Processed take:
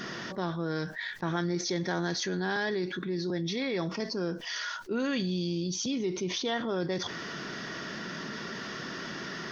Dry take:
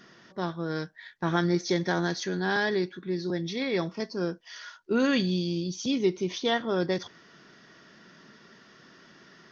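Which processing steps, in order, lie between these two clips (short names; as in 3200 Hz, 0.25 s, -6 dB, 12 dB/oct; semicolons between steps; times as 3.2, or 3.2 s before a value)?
fast leveller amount 70%; gain -8.5 dB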